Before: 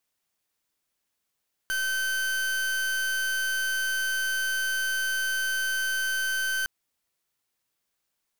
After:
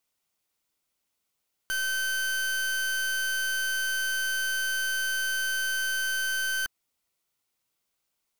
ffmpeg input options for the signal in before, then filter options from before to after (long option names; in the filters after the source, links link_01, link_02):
-f lavfi -i "aevalsrc='0.0422*(2*lt(mod(1540*t,1),0.39)-1)':duration=4.96:sample_rate=44100"
-af "bandreject=frequency=1700:width=8.5"